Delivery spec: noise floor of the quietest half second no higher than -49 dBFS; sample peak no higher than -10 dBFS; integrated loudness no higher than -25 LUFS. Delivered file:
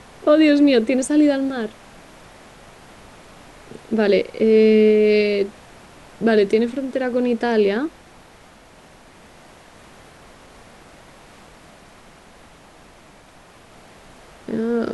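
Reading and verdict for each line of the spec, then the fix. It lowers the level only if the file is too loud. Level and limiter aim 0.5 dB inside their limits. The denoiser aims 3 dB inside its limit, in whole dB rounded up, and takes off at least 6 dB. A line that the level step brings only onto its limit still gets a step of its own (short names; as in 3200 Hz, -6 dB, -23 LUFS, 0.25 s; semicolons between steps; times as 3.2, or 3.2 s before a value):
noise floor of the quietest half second -47 dBFS: fail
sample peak -5.5 dBFS: fail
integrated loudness -18.0 LUFS: fail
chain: gain -7.5 dB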